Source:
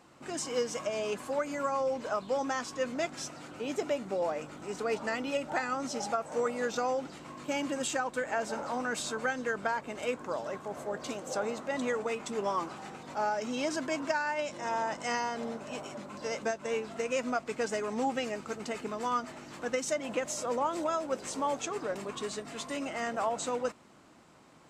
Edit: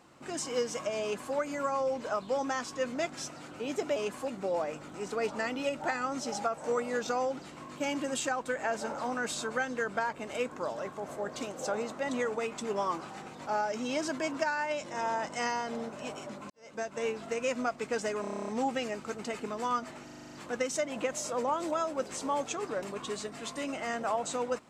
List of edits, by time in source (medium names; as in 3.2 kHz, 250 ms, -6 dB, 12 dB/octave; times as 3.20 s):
1.02–1.34 s: copy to 3.96 s
16.18–16.57 s: fade in quadratic
17.89 s: stutter 0.03 s, 10 plays
19.45 s: stutter 0.04 s, 8 plays